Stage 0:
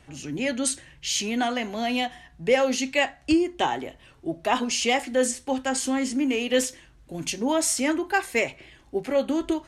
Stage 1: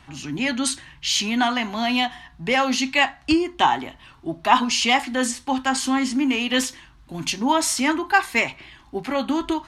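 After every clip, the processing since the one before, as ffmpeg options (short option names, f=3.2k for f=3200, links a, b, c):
-af "equalizer=f=250:t=o:w=1:g=3,equalizer=f=500:t=o:w=1:g=-11,equalizer=f=1k:t=o:w=1:g=10,equalizer=f=4k:t=o:w=1:g=5,equalizer=f=8k:t=o:w=1:g=-4,volume=3dB"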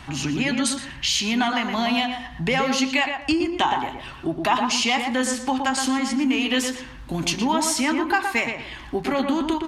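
-filter_complex "[0:a]acompressor=threshold=-34dB:ratio=2.5,asplit=2[a][b];[b]adelay=118,lowpass=f=2.1k:p=1,volume=-4.5dB,asplit=2[c][d];[d]adelay=118,lowpass=f=2.1k:p=1,volume=0.3,asplit=2[e][f];[f]adelay=118,lowpass=f=2.1k:p=1,volume=0.3,asplit=2[g][h];[h]adelay=118,lowpass=f=2.1k:p=1,volume=0.3[i];[c][e][g][i]amix=inputs=4:normalize=0[j];[a][j]amix=inputs=2:normalize=0,volume=9dB"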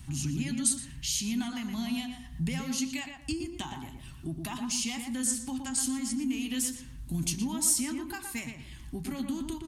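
-af "firequalizer=gain_entry='entry(150,0);entry(460,-21);entry(9100,5)':delay=0.05:min_phase=1,volume=-1.5dB"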